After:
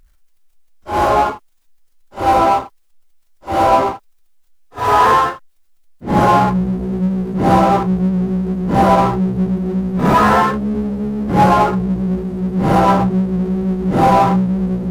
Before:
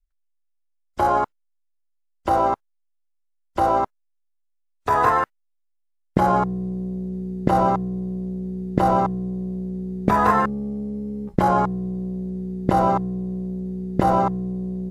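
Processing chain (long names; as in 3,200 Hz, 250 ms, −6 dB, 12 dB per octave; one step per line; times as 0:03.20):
random phases in long frames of 200 ms
power curve on the samples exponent 0.7
level +4 dB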